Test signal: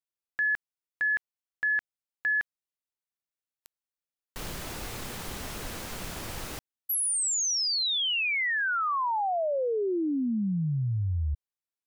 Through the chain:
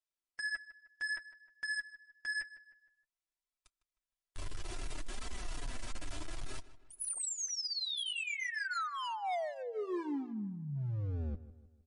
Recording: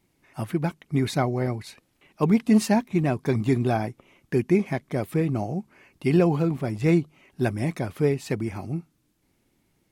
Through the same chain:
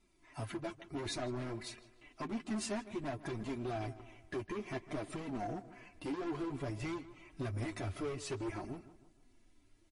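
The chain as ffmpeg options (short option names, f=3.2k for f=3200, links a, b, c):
-filter_complex "[0:a]asubboost=boost=3:cutoff=91,aecho=1:1:3:0.69,asplit=2[a][b];[b]acompressor=threshold=-32dB:ratio=12:attack=0.39:release=262:knee=1:detection=peak,volume=-1dB[c];[a][c]amix=inputs=2:normalize=0,alimiter=limit=-15.5dB:level=0:latency=1:release=178,flanger=delay=0.8:depth=3.3:regen=62:speed=0.27:shape=sinusoidal,asoftclip=type=hard:threshold=-30dB,flanger=delay=4.4:depth=6.1:regen=-4:speed=0.57:shape=triangular,asplit=2[d][e];[e]adelay=155,lowpass=f=3.2k:p=1,volume=-15.5dB,asplit=2[f][g];[g]adelay=155,lowpass=f=3.2k:p=1,volume=0.46,asplit=2[h][i];[i]adelay=155,lowpass=f=3.2k:p=1,volume=0.46,asplit=2[j][k];[k]adelay=155,lowpass=f=3.2k:p=1,volume=0.46[l];[f][h][j][l]amix=inputs=4:normalize=0[m];[d][m]amix=inputs=2:normalize=0,volume=-2.5dB" -ar 24000 -c:a libmp3lame -b:a 40k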